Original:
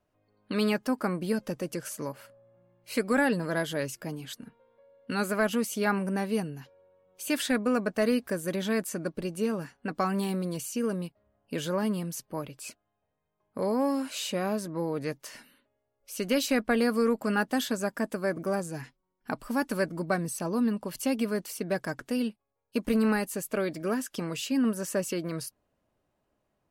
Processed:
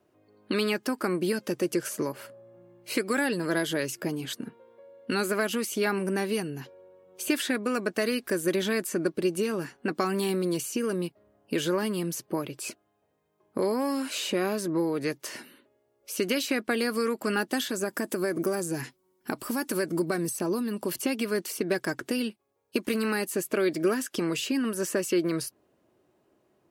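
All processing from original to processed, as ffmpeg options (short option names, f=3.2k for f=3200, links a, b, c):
-filter_complex "[0:a]asettb=1/sr,asplit=3[a][b][c];[a]atrim=end=17.694[d];[b]atrim=start=17.69:end=20.96,asetpts=PTS-STARTPTS,afade=t=in:d=0.004:c=qsin,afade=t=out:st=3.266:d=0.004:c=qsin,aemphasis=mode=production:type=cd,acompressor=threshold=-33dB:ratio=2:attack=3.2:release=140:knee=1:detection=peak[e];[c]atrim=start=20.956[f];[d][e]acrossfade=d=0.004:c1=hsin:c2=qsin[g];[g][f]acrossfade=d=0.004:c1=qsin:c2=hsin,acrossover=split=1300|2600[h][i][j];[h]acompressor=threshold=-37dB:ratio=4[k];[i]acompressor=threshold=-40dB:ratio=4[l];[j]acompressor=threshold=-40dB:ratio=4[m];[k][l][m]amix=inputs=3:normalize=0,highpass=100,equalizer=f=360:w=3:g=11,volume=6.5dB"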